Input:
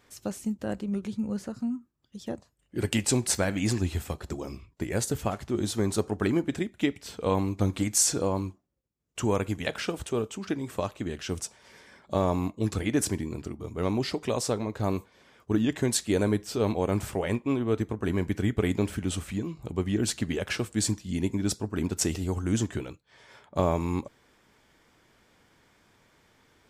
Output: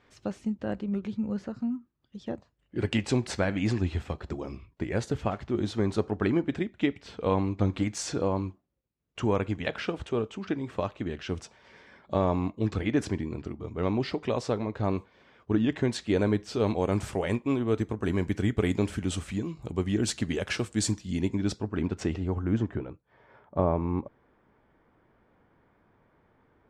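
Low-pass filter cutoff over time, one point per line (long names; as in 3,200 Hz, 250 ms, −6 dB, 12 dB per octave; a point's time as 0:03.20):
0:15.97 3,500 Hz
0:17.12 8,400 Hz
0:20.92 8,400 Hz
0:21.69 3,400 Hz
0:22.88 1,300 Hz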